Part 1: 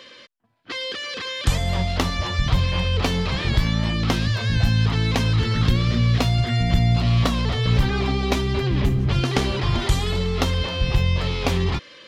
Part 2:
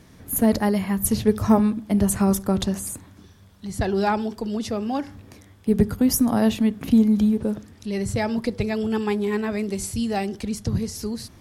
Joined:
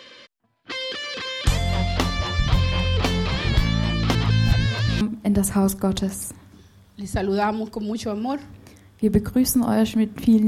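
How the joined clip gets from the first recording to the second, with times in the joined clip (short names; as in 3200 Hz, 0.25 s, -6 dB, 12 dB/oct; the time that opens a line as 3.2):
part 1
4.15–5.01 reverse
5.01 switch to part 2 from 1.66 s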